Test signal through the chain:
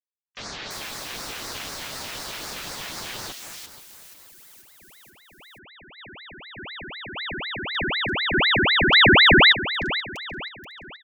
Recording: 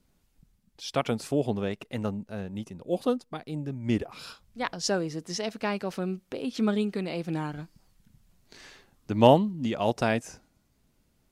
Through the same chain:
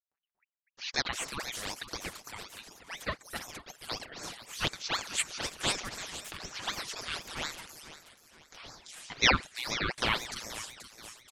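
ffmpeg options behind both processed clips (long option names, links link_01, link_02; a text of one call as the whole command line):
ffmpeg -i in.wav -filter_complex "[0:a]tiltshelf=frequency=840:gain=-9.5,acrossover=split=3700[link_01][link_02];[link_02]adelay=340[link_03];[link_01][link_03]amix=inputs=2:normalize=0,afftfilt=real='re*gte(hypot(re,im),0.00224)':imag='im*gte(hypot(re,im),0.00224)':win_size=1024:overlap=0.75,highpass=650,highshelf=frequency=8000:gain=12,asplit=2[link_04][link_05];[link_05]aecho=0:1:480|960|1440|1920:0.2|0.0798|0.0319|0.0128[link_06];[link_04][link_06]amix=inputs=2:normalize=0,acrossover=split=4600[link_07][link_08];[link_08]acompressor=threshold=-43dB:ratio=4:attack=1:release=60[link_09];[link_07][link_09]amix=inputs=2:normalize=0,aecho=1:1:6.5:0.5,acompressor=mode=upward:threshold=-55dB:ratio=2.5,aeval=exprs='val(0)*sin(2*PI*1800*n/s+1800*0.7/4*sin(2*PI*4*n/s))':channel_layout=same" out.wav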